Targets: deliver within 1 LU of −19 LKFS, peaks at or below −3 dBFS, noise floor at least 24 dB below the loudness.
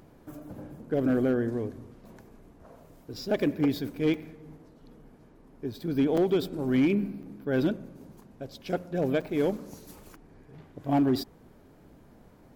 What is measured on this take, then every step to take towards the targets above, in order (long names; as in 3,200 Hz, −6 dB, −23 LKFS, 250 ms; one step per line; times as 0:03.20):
share of clipped samples 0.5%; peaks flattened at −18.0 dBFS; number of dropouts 4; longest dropout 4.9 ms; integrated loudness −28.5 LKFS; sample peak −18.0 dBFS; target loudness −19.0 LKFS
→ clipped peaks rebuilt −18 dBFS
repair the gap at 0:04.14/0:06.17/0:07.23/0:09.21, 4.9 ms
level +9.5 dB